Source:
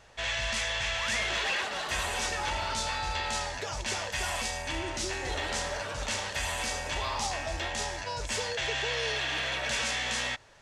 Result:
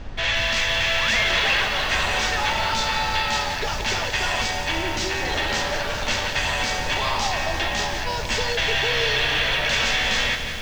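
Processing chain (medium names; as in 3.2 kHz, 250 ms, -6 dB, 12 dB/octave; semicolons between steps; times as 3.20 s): high-pass 62 Hz; treble shelf 2.5 kHz +9 dB; added noise brown -40 dBFS; distance through air 170 m; bit-crushed delay 175 ms, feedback 80%, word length 8-bit, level -9.5 dB; trim +7.5 dB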